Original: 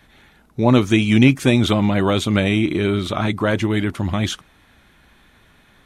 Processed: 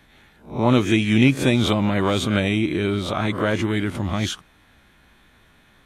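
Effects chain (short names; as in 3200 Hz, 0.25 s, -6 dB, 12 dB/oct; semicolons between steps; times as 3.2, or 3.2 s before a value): spectral swells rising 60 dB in 0.36 s; gain -3.5 dB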